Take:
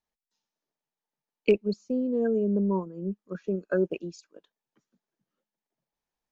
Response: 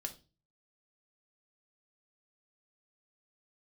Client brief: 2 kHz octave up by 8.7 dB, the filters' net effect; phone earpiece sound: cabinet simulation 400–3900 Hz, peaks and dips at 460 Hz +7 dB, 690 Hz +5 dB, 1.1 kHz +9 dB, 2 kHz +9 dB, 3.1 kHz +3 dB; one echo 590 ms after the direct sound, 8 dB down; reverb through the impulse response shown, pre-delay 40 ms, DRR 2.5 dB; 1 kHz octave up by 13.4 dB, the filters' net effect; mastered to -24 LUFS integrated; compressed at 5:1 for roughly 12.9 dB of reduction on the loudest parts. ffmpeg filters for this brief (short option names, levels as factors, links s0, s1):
-filter_complex "[0:a]equalizer=f=1000:t=o:g=8,equalizer=f=2000:t=o:g=4.5,acompressor=threshold=0.0355:ratio=5,aecho=1:1:590:0.398,asplit=2[s0][s1];[1:a]atrim=start_sample=2205,adelay=40[s2];[s1][s2]afir=irnorm=-1:irlink=0,volume=0.891[s3];[s0][s3]amix=inputs=2:normalize=0,highpass=400,equalizer=f=460:t=q:w=4:g=7,equalizer=f=690:t=q:w=4:g=5,equalizer=f=1100:t=q:w=4:g=9,equalizer=f=2000:t=q:w=4:g=9,equalizer=f=3100:t=q:w=4:g=3,lowpass=f=3900:w=0.5412,lowpass=f=3900:w=1.3066,volume=2.37"